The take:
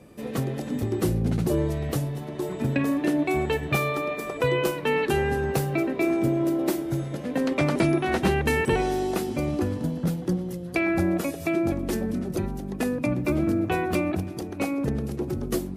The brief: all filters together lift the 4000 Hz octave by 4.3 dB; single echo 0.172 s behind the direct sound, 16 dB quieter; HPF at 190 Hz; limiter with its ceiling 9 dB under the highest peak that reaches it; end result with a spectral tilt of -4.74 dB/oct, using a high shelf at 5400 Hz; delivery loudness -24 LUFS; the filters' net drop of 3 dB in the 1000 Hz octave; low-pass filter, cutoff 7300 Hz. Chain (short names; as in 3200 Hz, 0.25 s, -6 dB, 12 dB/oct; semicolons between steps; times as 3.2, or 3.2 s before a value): HPF 190 Hz; LPF 7300 Hz; bell 1000 Hz -4.5 dB; bell 4000 Hz +8 dB; high shelf 5400 Hz -4.5 dB; limiter -18.5 dBFS; echo 0.172 s -16 dB; gain +4.5 dB